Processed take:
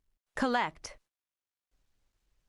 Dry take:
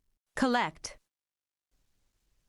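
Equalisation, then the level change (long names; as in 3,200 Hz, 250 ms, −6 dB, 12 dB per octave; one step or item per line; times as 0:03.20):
parametric band 180 Hz −4 dB 2.1 octaves
high-shelf EQ 4,700 Hz −7 dB
0.0 dB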